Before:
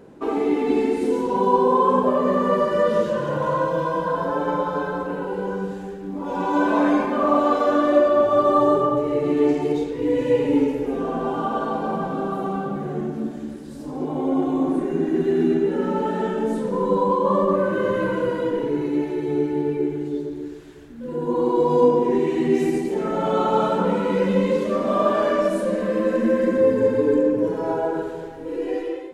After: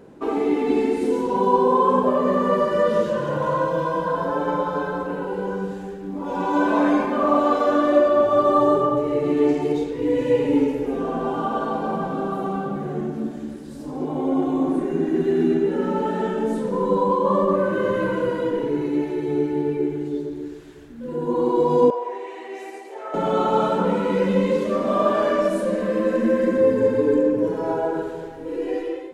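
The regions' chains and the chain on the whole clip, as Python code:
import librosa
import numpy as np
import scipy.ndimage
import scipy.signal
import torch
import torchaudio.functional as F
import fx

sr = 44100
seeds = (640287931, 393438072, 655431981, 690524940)

y = fx.chain(x, sr, fx.highpass(hz=590.0, slope=24),
    fx.high_shelf(hz=2200.0, db=-10.5), at=(21.9, 23.14))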